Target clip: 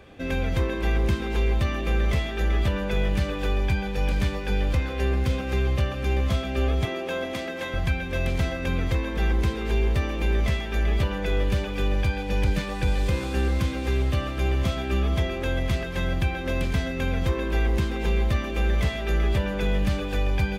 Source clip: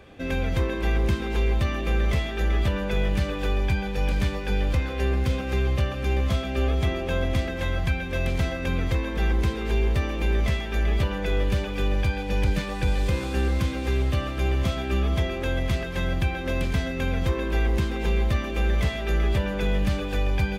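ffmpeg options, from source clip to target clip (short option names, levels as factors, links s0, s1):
-filter_complex "[0:a]asettb=1/sr,asplit=3[s0][s1][s2];[s0]atrim=end=6.854[s3];[s1]atrim=start=6.85:end=7.74,asetpts=PTS-STARTPTS,afade=t=in:d=0.004:c=qsin,afade=t=out:st=0.886:d=0.004:c=qsin,highpass=260[s4];[s2]atrim=start=7.736[s5];[s3][s4]acrossfade=d=0.004:c1=hsin:c2=qsin[s6];[s6][s5]acrossfade=d=0.004:c1=qsin:c2=hsin"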